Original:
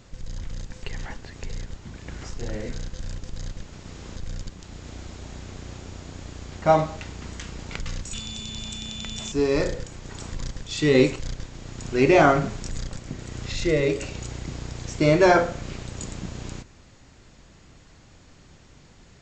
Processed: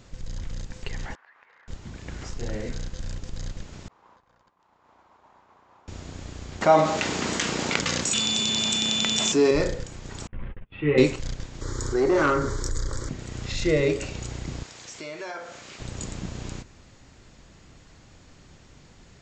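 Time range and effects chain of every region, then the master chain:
1.15–1.68 s: Butterworth band-pass 1.3 kHz, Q 1.3 + compression 2.5:1, threshold -53 dBFS
3.88–5.88 s: band-pass filter 980 Hz, Q 3.8 + expander -56 dBFS
6.61–9.51 s: high-pass 230 Hz + level flattener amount 50%
10.27–10.98 s: gate -33 dBFS, range -29 dB + steep low-pass 2.8 kHz 48 dB/octave + three-phase chorus
11.61–13.09 s: static phaser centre 710 Hz, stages 6 + valve stage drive 15 dB, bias 0.35 + level flattener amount 50%
14.63–15.80 s: high-pass 1.1 kHz 6 dB/octave + compression 3:1, threshold -37 dBFS
whole clip: none

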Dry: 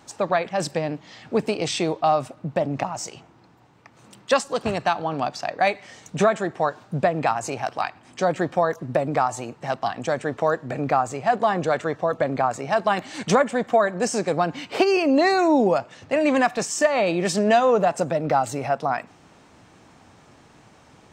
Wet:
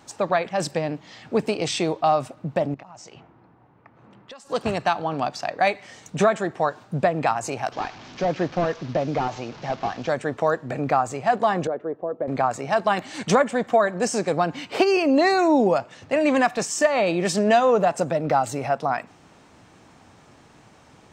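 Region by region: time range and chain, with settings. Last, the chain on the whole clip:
2.74–4.50 s: level-controlled noise filter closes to 1.5 kHz, open at -21.5 dBFS + compression 12:1, threshold -39 dBFS
7.72–10.09 s: one-bit delta coder 32 kbps, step -36.5 dBFS + band-stop 1.9 kHz, Q 27
11.67–12.28 s: band-pass filter 390 Hz, Q 1.6 + distance through air 170 m
whole clip: none

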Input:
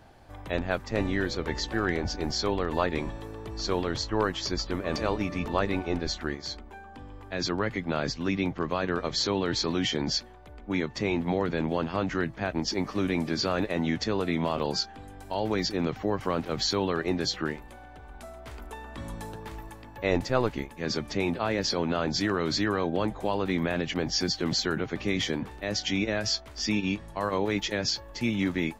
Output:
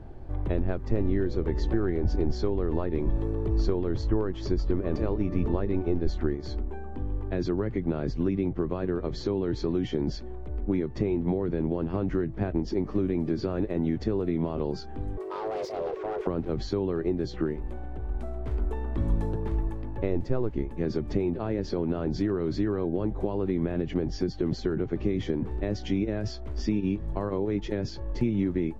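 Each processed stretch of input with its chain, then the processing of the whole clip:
15.17–16.27 s: hard clipper -29.5 dBFS + frequency shift +330 Hz + loudspeaker Doppler distortion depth 0.16 ms
whole clip: peaking EQ 370 Hz +8.5 dB 0.59 oct; compression 6:1, threshold -29 dBFS; tilt EQ -4 dB/octave; trim -1.5 dB

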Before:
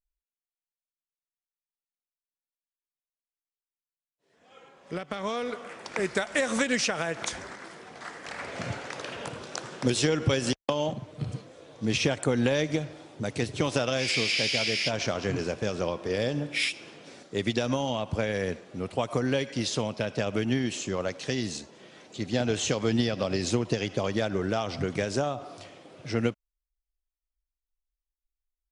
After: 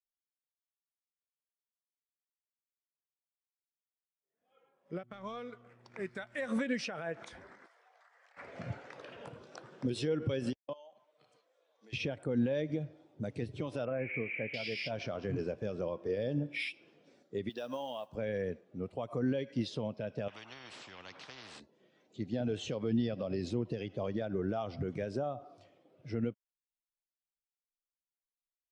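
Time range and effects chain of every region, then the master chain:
5.02–6.47 s: companding laws mixed up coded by A + dynamic bell 420 Hz, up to -5 dB, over -40 dBFS, Q 0.71 + mains buzz 120 Hz, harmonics 3, -52 dBFS -5 dB/octave
7.66–8.37 s: high-pass 550 Hz 24 dB/octave + compression 8:1, threshold -44 dBFS
10.73–11.93 s: high-pass 720 Hz + compression 4:1, threshold -42 dBFS
13.85–14.54 s: block-companded coder 7-bit + steep low-pass 2.4 kHz 48 dB/octave
17.49–18.15 s: high-pass 670 Hz 6 dB/octave + band-stop 2.2 kHz, Q 5.1 + modulation noise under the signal 15 dB
20.28–21.60 s: band-pass filter 590 Hz, Q 0.5 + spectrum-flattening compressor 10:1
whole clip: dynamic bell 6.7 kHz, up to -8 dB, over -50 dBFS, Q 2; peak limiter -20 dBFS; spectral contrast expander 1.5:1; trim -1.5 dB

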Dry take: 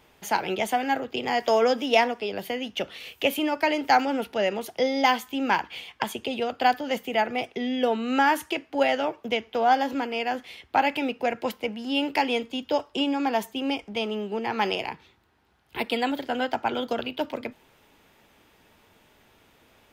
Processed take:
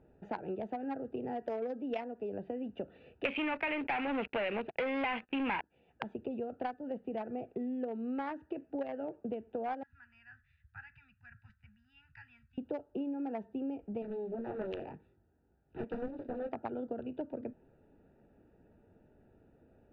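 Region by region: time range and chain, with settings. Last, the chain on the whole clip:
3.25–5.61 s: waveshaping leveller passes 5 + resonant low-pass 2.5 kHz, resonance Q 4.3
9.83–12.58 s: elliptic band-stop 110–1600 Hz, stop band 60 dB + peaking EQ 3.1 kHz -11 dB 0.71 oct
14.02–16.53 s: treble shelf 4.4 kHz +8.5 dB + chorus 1.9 Hz, delay 19.5 ms, depth 2.4 ms + loudspeaker Doppler distortion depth 0.86 ms
whole clip: local Wiener filter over 41 samples; low-pass 2.2 kHz 12 dB/octave; compression 6:1, threshold -35 dBFS

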